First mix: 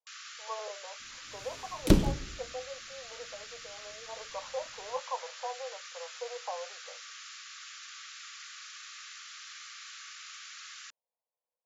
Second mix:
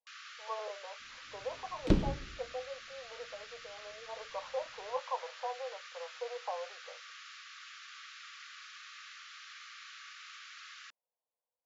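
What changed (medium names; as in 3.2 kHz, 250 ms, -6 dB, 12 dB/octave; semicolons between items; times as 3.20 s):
second sound -5.0 dB; master: add distance through air 150 m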